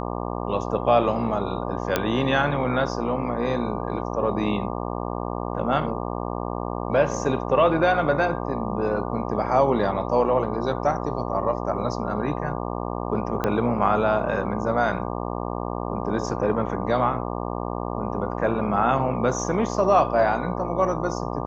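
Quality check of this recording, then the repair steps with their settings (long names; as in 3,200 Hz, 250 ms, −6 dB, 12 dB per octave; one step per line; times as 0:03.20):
mains buzz 60 Hz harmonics 20 −29 dBFS
0:01.96: click −6 dBFS
0:13.44: click −11 dBFS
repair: click removal
hum removal 60 Hz, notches 20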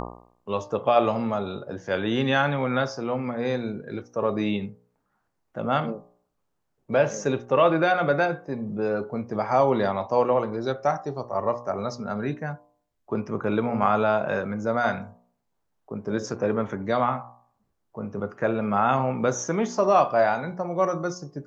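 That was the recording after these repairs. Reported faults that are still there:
0:13.44: click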